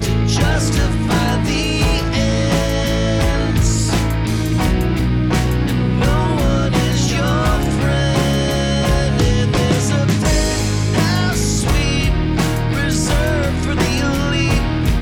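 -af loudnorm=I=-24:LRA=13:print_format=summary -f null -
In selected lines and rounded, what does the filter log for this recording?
Input Integrated:    -16.7 LUFS
Input True Peak:      -6.0 dBTP
Input LRA:             1.1 LU
Input Threshold:     -26.7 LUFS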